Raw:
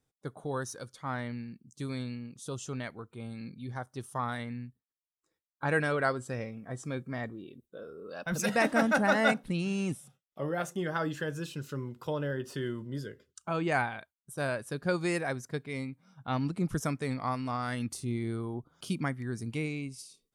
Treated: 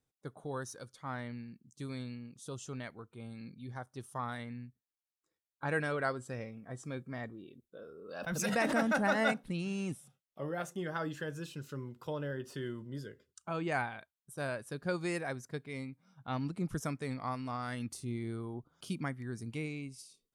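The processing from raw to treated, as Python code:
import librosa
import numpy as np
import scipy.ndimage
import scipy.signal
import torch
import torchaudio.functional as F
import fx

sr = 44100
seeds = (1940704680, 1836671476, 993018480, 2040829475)

y = fx.pre_swell(x, sr, db_per_s=50.0, at=(8.08, 9.23), fade=0.02)
y = y * librosa.db_to_amplitude(-5.0)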